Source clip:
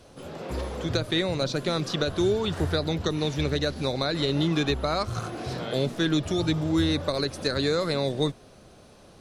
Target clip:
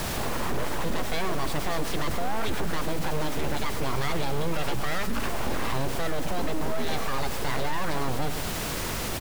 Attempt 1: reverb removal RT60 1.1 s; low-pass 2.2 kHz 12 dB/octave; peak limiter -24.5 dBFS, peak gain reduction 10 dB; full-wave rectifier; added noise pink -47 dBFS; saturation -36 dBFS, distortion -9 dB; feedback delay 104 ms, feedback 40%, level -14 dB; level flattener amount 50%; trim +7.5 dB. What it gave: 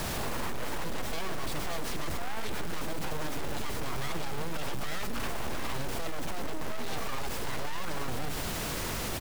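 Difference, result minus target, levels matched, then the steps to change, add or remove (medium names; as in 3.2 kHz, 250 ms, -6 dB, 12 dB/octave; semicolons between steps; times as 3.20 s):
saturation: distortion +11 dB
change: saturation -26 dBFS, distortion -20 dB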